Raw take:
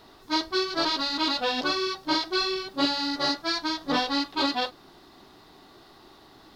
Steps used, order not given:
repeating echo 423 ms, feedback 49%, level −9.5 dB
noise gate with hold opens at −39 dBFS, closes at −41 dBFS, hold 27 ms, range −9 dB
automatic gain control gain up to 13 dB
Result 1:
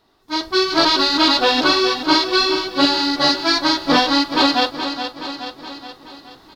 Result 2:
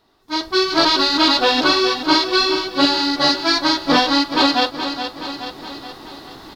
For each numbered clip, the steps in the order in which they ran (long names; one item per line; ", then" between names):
noise gate with hold, then repeating echo, then automatic gain control
repeating echo, then automatic gain control, then noise gate with hold